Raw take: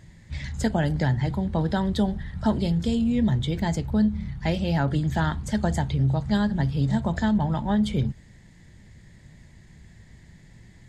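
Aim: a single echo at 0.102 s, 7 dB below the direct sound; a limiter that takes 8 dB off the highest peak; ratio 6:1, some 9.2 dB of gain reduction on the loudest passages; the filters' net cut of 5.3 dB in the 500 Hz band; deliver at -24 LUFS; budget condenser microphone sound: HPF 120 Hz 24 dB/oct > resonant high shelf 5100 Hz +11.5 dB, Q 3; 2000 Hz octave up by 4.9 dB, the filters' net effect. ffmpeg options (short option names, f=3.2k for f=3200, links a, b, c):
-af "equalizer=f=500:t=o:g=-7.5,equalizer=f=2k:t=o:g=8.5,acompressor=threshold=-29dB:ratio=6,alimiter=level_in=1dB:limit=-24dB:level=0:latency=1,volume=-1dB,highpass=f=120:w=0.5412,highpass=f=120:w=1.3066,highshelf=f=5.1k:t=q:w=3:g=11.5,aecho=1:1:102:0.447,volume=9dB"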